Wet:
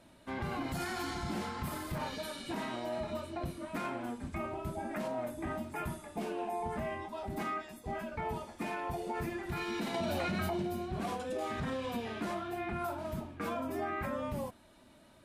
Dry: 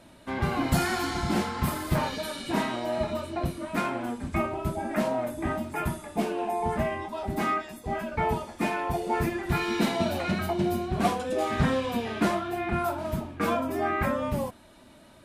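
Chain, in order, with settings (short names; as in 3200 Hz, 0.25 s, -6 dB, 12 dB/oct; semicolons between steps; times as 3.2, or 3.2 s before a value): limiter -21 dBFS, peak gain reduction 10 dB; 9.94–10.63 fast leveller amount 100%; gain -7 dB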